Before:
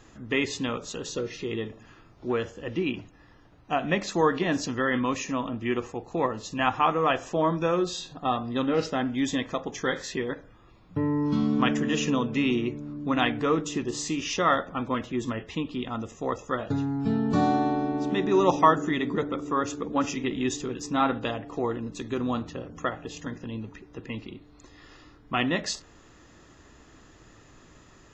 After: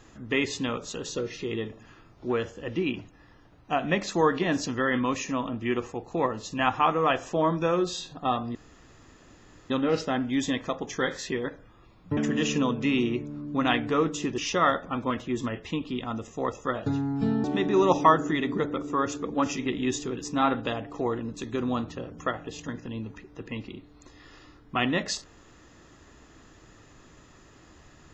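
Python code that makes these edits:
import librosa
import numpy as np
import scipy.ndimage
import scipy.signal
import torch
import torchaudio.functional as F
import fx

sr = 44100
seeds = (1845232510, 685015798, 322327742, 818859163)

y = fx.edit(x, sr, fx.insert_room_tone(at_s=8.55, length_s=1.15),
    fx.cut(start_s=11.02, length_s=0.67),
    fx.cut(start_s=13.9, length_s=0.32),
    fx.cut(start_s=17.28, length_s=0.74), tone=tone)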